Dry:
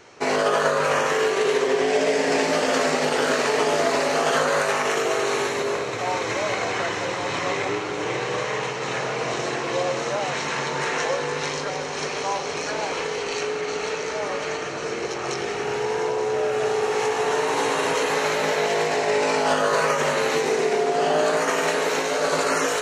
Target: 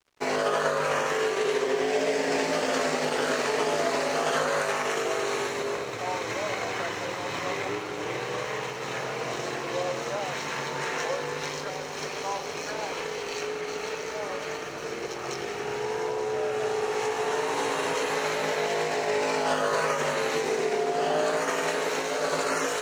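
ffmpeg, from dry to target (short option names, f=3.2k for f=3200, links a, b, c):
-af "aeval=exprs='sgn(val(0))*max(abs(val(0))-0.00708,0)':c=same,volume=-4.5dB"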